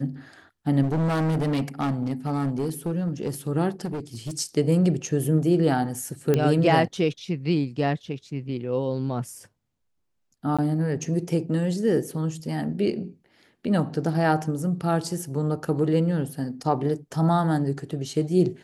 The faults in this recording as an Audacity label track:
0.820000	3.300000	clipped -21 dBFS
3.840000	4.320000	clipped -27 dBFS
6.340000	6.340000	pop -10 dBFS
10.570000	10.590000	gap 16 ms

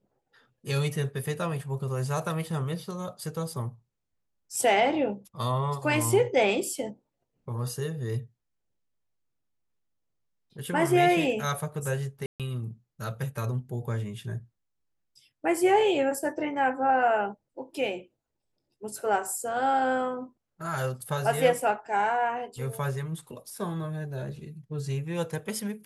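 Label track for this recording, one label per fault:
12.260000	12.400000	gap 0.137 s

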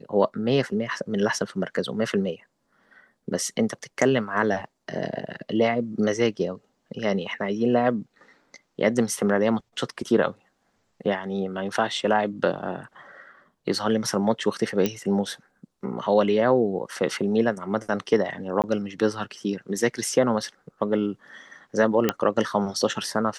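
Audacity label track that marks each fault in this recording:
14.860000	14.860000	pop -9 dBFS
18.620000	18.640000	gap 18 ms
22.090000	22.090000	pop -6 dBFS

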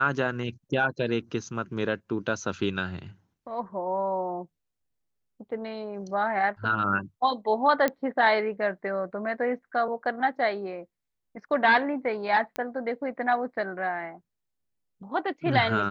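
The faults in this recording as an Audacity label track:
7.880000	7.880000	pop -12 dBFS
12.560000	12.560000	pop -17 dBFS

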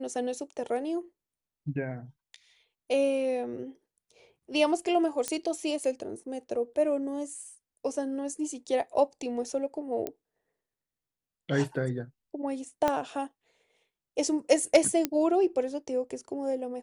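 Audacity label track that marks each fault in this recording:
5.280000	5.280000	pop -14 dBFS
10.070000	10.070000	pop -19 dBFS
12.880000	12.880000	pop -13 dBFS
15.050000	15.050000	pop -11 dBFS

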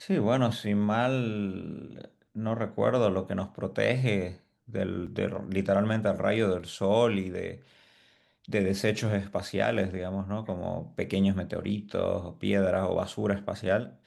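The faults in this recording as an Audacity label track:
5.060000	5.070000	gap 6 ms

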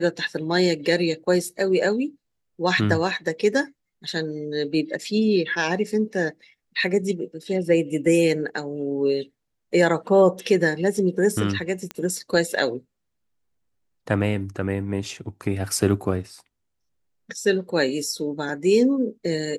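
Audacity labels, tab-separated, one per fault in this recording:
11.910000	11.910000	pop -15 dBFS

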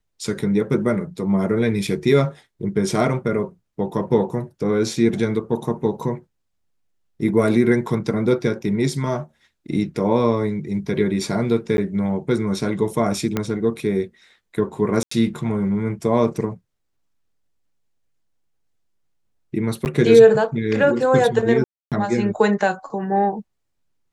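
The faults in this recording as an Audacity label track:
1.870000	1.870000	gap 4.4 ms
11.770000	11.780000	gap 11 ms
13.370000	13.370000	pop -8 dBFS
15.030000	15.110000	gap 84 ms
19.850000	19.860000	gap 9.2 ms
21.640000	21.920000	gap 0.277 s

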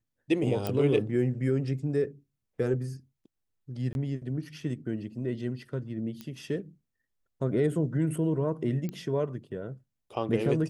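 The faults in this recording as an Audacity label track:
0.670000	0.670000	pop -16 dBFS
3.930000	3.950000	gap 21 ms
6.210000	6.210000	pop -25 dBFS
8.890000	8.890000	pop -23 dBFS

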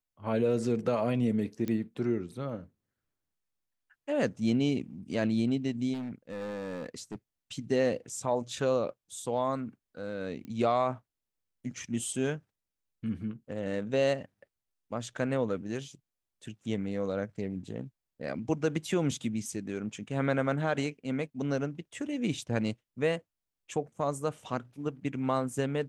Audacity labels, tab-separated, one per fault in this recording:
1.680000	1.680000	pop -21 dBFS
5.930000	7.160000	clipped -33.5 dBFS
10.450000	10.450000	pop -31 dBFS

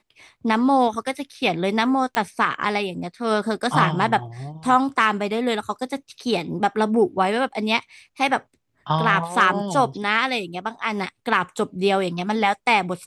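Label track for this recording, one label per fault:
2.150000	2.150000	pop -9 dBFS

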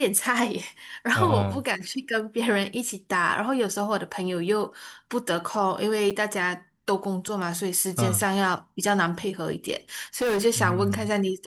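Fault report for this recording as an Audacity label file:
6.100000	6.110000	gap 6.7 ms
10.170000	10.460000	clipped -21.5 dBFS

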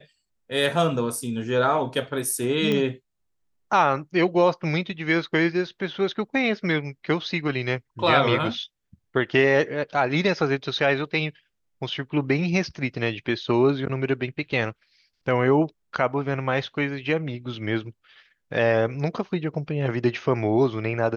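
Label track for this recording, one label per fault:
2.720000	2.720000	pop -13 dBFS

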